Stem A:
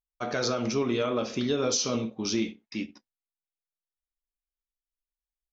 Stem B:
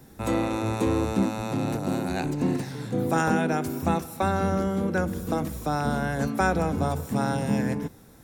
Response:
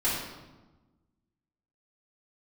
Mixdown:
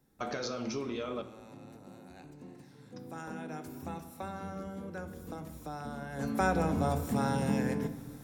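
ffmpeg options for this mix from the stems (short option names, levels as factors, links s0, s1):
-filter_complex "[0:a]acompressor=threshold=0.0178:ratio=6,volume=1,asplit=3[s0][s1][s2];[s0]atrim=end=1.22,asetpts=PTS-STARTPTS,afade=t=out:st=1.216:d=0.004:c=hsin[s3];[s1]atrim=start=1.22:end=2.96,asetpts=PTS-STARTPTS,volume=0[s4];[s2]atrim=start=2.96,asetpts=PTS-STARTPTS,afade=t=in:d=0.004:c=hsin[s5];[s3][s4][s5]concat=n=3:v=0:a=1,asplit=3[s6][s7][s8];[s7]volume=0.112[s9];[1:a]acompressor=threshold=0.0224:ratio=1.5,volume=0.841,afade=t=in:st=2.8:d=0.79:silence=0.375837,afade=t=in:st=6.09:d=0.35:silence=0.281838,asplit=2[s10][s11];[s11]volume=0.126[s12];[s8]apad=whole_len=363173[s13];[s10][s13]sidechaincompress=threshold=0.00891:ratio=8:attack=16:release=124[s14];[2:a]atrim=start_sample=2205[s15];[s9][s12]amix=inputs=2:normalize=0[s16];[s16][s15]afir=irnorm=-1:irlink=0[s17];[s6][s14][s17]amix=inputs=3:normalize=0"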